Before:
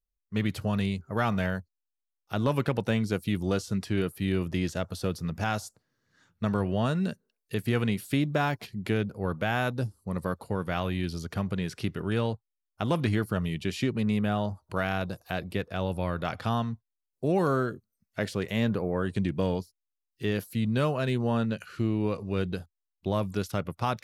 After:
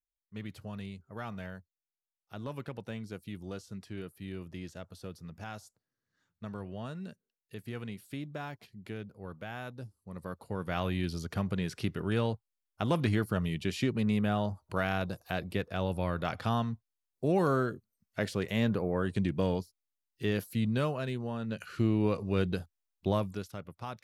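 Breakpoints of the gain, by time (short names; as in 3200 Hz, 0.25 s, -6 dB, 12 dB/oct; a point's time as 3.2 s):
10.01 s -13.5 dB
10.83 s -2 dB
20.63 s -2 dB
21.39 s -10.5 dB
21.65 s 0 dB
23.11 s 0 dB
23.52 s -12 dB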